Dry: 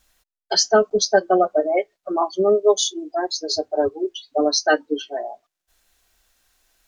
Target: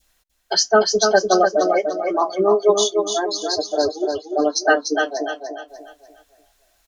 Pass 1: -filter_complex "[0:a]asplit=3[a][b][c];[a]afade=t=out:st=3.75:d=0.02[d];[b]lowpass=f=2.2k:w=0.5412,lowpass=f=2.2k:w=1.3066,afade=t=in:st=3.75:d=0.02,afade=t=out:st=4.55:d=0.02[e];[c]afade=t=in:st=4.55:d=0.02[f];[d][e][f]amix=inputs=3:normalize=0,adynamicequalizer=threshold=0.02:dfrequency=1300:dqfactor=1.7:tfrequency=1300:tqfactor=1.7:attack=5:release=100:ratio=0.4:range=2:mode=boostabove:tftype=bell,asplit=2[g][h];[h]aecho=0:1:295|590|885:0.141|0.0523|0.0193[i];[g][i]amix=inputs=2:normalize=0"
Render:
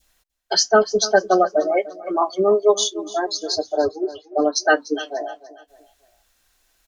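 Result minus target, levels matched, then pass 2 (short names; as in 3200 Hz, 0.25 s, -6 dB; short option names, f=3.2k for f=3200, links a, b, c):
echo-to-direct -12 dB
-filter_complex "[0:a]asplit=3[a][b][c];[a]afade=t=out:st=3.75:d=0.02[d];[b]lowpass=f=2.2k:w=0.5412,lowpass=f=2.2k:w=1.3066,afade=t=in:st=3.75:d=0.02,afade=t=out:st=4.55:d=0.02[e];[c]afade=t=in:st=4.55:d=0.02[f];[d][e][f]amix=inputs=3:normalize=0,adynamicequalizer=threshold=0.02:dfrequency=1300:dqfactor=1.7:tfrequency=1300:tqfactor=1.7:attack=5:release=100:ratio=0.4:range=2:mode=boostabove:tftype=bell,asplit=2[g][h];[h]aecho=0:1:295|590|885|1180|1475:0.562|0.208|0.077|0.0285|0.0105[i];[g][i]amix=inputs=2:normalize=0"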